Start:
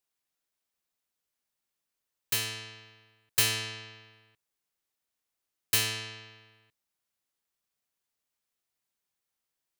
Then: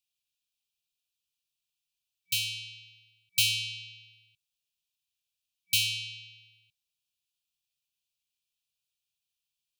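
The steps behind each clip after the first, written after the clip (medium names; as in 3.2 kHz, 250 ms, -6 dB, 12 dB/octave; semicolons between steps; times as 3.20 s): peaking EQ 3.2 kHz +7.5 dB 1.2 oct; FFT band-reject 180–2300 Hz; trim -3 dB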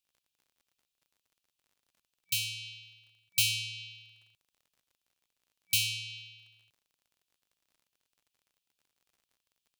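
dynamic bell 3.4 kHz, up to -4 dB, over -39 dBFS, Q 1.4; crackle 50 per s -56 dBFS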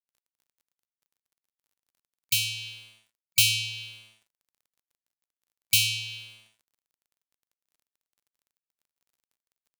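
crossover distortion -58.5 dBFS; trim +6.5 dB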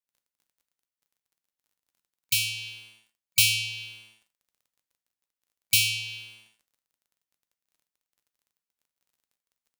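gated-style reverb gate 120 ms falling, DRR 8.5 dB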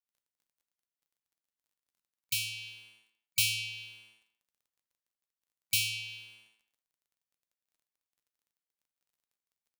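speakerphone echo 200 ms, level -15 dB; trim -7.5 dB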